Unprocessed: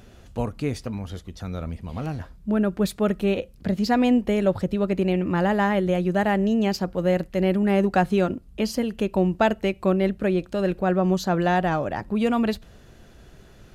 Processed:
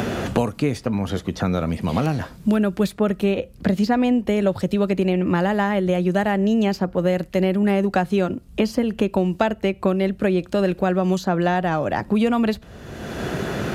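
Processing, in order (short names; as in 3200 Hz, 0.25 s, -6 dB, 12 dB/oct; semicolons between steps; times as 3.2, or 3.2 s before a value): HPF 55 Hz; three-band squash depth 100%; gain +1.5 dB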